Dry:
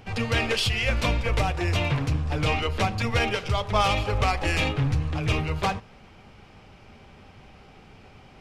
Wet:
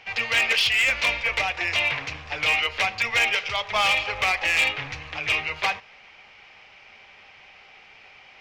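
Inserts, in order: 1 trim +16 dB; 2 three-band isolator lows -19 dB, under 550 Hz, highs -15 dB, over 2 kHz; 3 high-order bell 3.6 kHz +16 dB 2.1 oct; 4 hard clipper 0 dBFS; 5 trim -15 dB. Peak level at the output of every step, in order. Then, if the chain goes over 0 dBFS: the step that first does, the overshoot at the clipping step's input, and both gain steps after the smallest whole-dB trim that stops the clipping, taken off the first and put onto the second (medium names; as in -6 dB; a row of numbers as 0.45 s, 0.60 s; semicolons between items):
+6.0 dBFS, +1.5 dBFS, +9.0 dBFS, 0.0 dBFS, -15.0 dBFS; step 1, 9.0 dB; step 1 +7 dB, step 5 -6 dB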